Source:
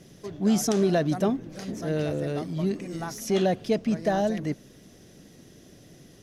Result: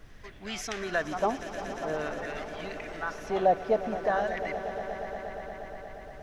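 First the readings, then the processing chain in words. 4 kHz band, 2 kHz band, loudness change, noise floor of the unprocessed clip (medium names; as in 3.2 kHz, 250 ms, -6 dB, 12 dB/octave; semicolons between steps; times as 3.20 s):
-4.0 dB, +4.5 dB, -5.0 dB, -53 dBFS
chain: LFO band-pass sine 0.48 Hz 740–2300 Hz; added noise brown -56 dBFS; echo with a slow build-up 118 ms, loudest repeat 5, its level -15.5 dB; trim +7.5 dB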